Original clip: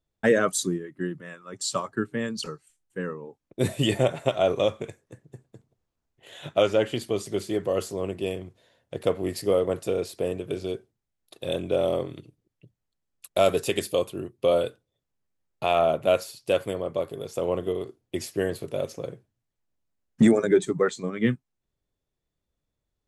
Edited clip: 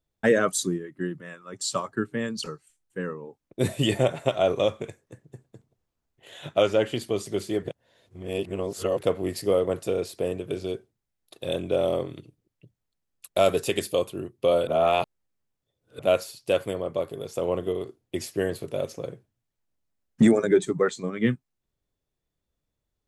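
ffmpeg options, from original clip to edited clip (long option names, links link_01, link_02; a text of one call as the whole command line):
ffmpeg -i in.wav -filter_complex "[0:a]asplit=5[link_01][link_02][link_03][link_04][link_05];[link_01]atrim=end=7.632[link_06];[link_02]atrim=start=7.628:end=9.012,asetpts=PTS-STARTPTS,areverse[link_07];[link_03]atrim=start=9.008:end=14.672[link_08];[link_04]atrim=start=14.668:end=15.992,asetpts=PTS-STARTPTS,areverse[link_09];[link_05]atrim=start=15.988[link_10];[link_06][link_07]acrossfade=duration=0.004:curve1=hsin:curve2=hsin[link_11];[link_11][link_08]acrossfade=duration=0.004:curve1=hsin:curve2=hsin[link_12];[link_12][link_09]acrossfade=duration=0.004:curve1=hsin:curve2=hsin[link_13];[link_13][link_10]acrossfade=duration=0.004:curve1=hsin:curve2=hsin" out.wav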